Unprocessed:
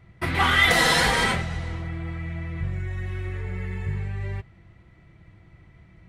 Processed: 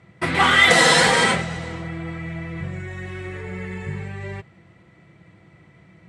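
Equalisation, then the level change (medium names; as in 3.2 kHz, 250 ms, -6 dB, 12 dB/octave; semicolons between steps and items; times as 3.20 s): cabinet simulation 150–9900 Hz, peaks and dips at 170 Hz +3 dB, 510 Hz +4 dB, 7.9 kHz +6 dB; +4.5 dB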